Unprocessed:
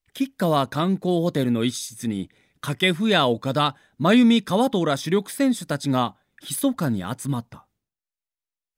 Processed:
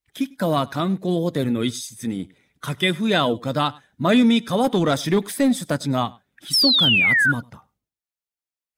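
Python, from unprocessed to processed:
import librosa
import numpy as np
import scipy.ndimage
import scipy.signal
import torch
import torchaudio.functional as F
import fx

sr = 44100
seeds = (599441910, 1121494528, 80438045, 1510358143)

p1 = fx.spec_quant(x, sr, step_db=15)
p2 = scipy.signal.sosfilt(scipy.signal.butter(2, 41.0, 'highpass', fs=sr, output='sos'), p1)
p3 = fx.leveller(p2, sr, passes=1, at=(4.64, 5.83))
p4 = fx.spec_paint(p3, sr, seeds[0], shape='fall', start_s=6.53, length_s=0.79, low_hz=1400.0, high_hz=5600.0, level_db=-17.0)
y = p4 + fx.echo_single(p4, sr, ms=100, db=-24.0, dry=0)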